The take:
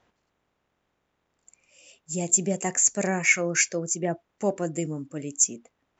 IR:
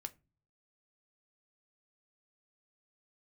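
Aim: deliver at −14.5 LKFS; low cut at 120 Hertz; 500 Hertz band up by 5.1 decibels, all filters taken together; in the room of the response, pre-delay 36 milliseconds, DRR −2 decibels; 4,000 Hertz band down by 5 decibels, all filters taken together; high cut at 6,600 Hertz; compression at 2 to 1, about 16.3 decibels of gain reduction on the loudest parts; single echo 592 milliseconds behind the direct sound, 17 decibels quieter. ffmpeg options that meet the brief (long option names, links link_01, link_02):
-filter_complex "[0:a]highpass=120,lowpass=6600,equalizer=frequency=500:width_type=o:gain=6.5,equalizer=frequency=4000:width_type=o:gain=-6.5,acompressor=threshold=-48dB:ratio=2,aecho=1:1:592:0.141,asplit=2[link_01][link_02];[1:a]atrim=start_sample=2205,adelay=36[link_03];[link_02][link_03]afir=irnorm=-1:irlink=0,volume=5.5dB[link_04];[link_01][link_04]amix=inputs=2:normalize=0,volume=21.5dB"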